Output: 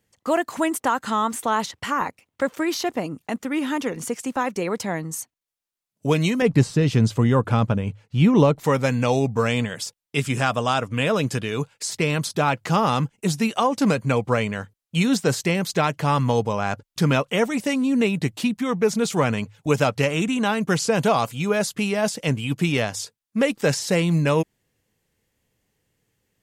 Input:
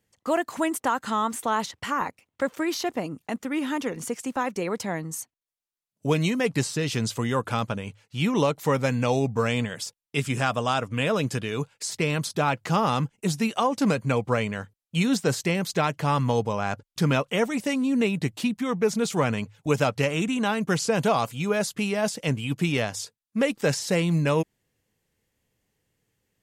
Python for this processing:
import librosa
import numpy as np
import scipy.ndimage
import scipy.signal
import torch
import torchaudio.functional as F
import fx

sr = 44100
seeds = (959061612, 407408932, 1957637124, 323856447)

y = fx.tilt_eq(x, sr, slope=-2.5, at=(6.42, 8.64))
y = y * 10.0 ** (3.0 / 20.0)